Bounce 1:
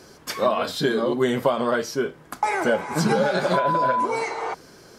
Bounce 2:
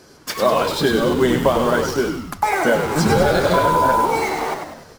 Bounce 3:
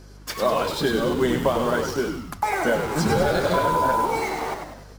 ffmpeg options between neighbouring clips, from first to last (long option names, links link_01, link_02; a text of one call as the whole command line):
ffmpeg -i in.wav -filter_complex "[0:a]asplit=2[link_01][link_02];[link_02]acrusher=bits=4:mix=0:aa=0.000001,volume=-5dB[link_03];[link_01][link_03]amix=inputs=2:normalize=0,asplit=8[link_04][link_05][link_06][link_07][link_08][link_09][link_10][link_11];[link_05]adelay=98,afreqshift=-74,volume=-6dB[link_12];[link_06]adelay=196,afreqshift=-148,volume=-11.5dB[link_13];[link_07]adelay=294,afreqshift=-222,volume=-17dB[link_14];[link_08]adelay=392,afreqshift=-296,volume=-22.5dB[link_15];[link_09]adelay=490,afreqshift=-370,volume=-28.1dB[link_16];[link_10]adelay=588,afreqshift=-444,volume=-33.6dB[link_17];[link_11]adelay=686,afreqshift=-518,volume=-39.1dB[link_18];[link_04][link_12][link_13][link_14][link_15][link_16][link_17][link_18]amix=inputs=8:normalize=0" out.wav
ffmpeg -i in.wav -af "aeval=exprs='val(0)+0.0112*(sin(2*PI*50*n/s)+sin(2*PI*2*50*n/s)/2+sin(2*PI*3*50*n/s)/3+sin(2*PI*4*50*n/s)/4+sin(2*PI*5*50*n/s)/5)':channel_layout=same,volume=-5dB" out.wav